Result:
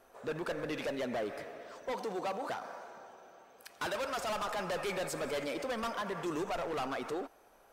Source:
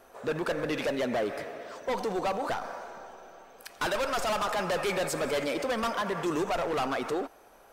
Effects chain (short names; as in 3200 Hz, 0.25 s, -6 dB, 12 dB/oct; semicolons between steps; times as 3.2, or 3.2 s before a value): 1.91–4.29 HPF 180 Hz -> 46 Hz 12 dB/oct; gain -6.5 dB